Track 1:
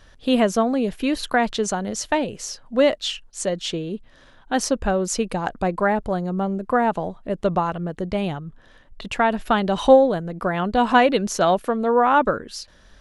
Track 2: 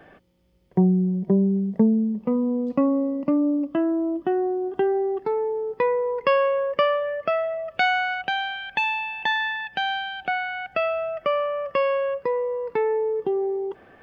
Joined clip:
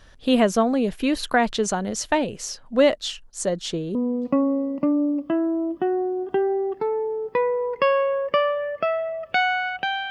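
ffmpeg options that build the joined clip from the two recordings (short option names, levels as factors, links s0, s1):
-filter_complex "[0:a]asettb=1/sr,asplit=3[s0][s1][s2];[s0]atrim=end=2.964[s3];[s1]atrim=start=2.96:end=3.95,asetpts=PTS-STARTPTS,afade=t=in:d=0.004:c=qsin,afade=t=out:st=0.986:d=0.004:c=qsin,equalizer=f=2600:t=o:w=0.91:g=-6[s4];[s2]atrim=start=3.946[s5];[s3][s4]acrossfade=d=0.004:c1=hsin:c2=qsin[s6];[s6][s5]acrossfade=d=0.004:c1=qsin:c2=hsin,apad=whole_dur=10.1,atrim=end=10.1,atrim=end=3.952[s7];[1:a]atrim=start=2.398:end=8.55[s8];[s7][s8]acrossfade=d=0.004:c1=hsin:c2=hsin"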